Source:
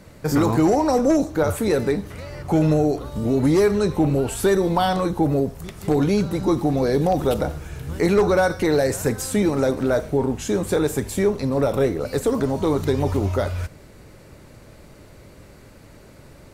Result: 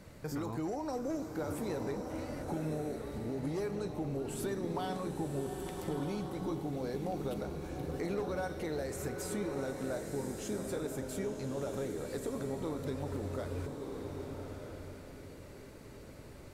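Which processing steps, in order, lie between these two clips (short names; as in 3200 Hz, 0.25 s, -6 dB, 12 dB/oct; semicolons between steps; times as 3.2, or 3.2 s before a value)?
compressor 2:1, threshold -37 dBFS, peak gain reduction 12.5 dB; narrowing echo 0.68 s, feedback 75%, band-pass 370 Hz, level -15 dB; bloom reverb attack 1.29 s, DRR 3.5 dB; gain -7.5 dB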